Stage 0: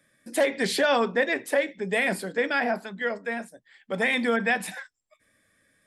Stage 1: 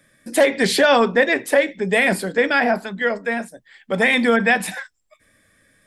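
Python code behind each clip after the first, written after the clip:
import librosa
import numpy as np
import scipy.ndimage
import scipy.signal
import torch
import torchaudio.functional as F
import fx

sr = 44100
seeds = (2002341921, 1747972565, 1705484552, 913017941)

y = fx.low_shelf(x, sr, hz=71.0, db=9.0)
y = F.gain(torch.from_numpy(y), 7.5).numpy()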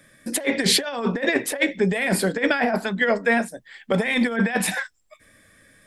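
y = fx.over_compress(x, sr, threshold_db=-20.0, ratio=-0.5)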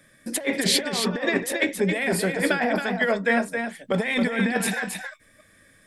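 y = x + 10.0 ** (-6.0 / 20.0) * np.pad(x, (int(271 * sr / 1000.0), 0))[:len(x)]
y = F.gain(torch.from_numpy(y), -2.5).numpy()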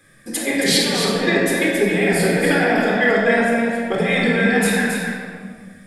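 y = fx.room_shoebox(x, sr, seeds[0], volume_m3=2000.0, walls='mixed', distance_m=3.9)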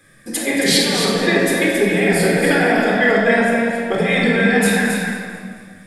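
y = fx.echo_feedback(x, sr, ms=222, feedback_pct=43, wet_db=-14)
y = F.gain(torch.from_numpy(y), 1.5).numpy()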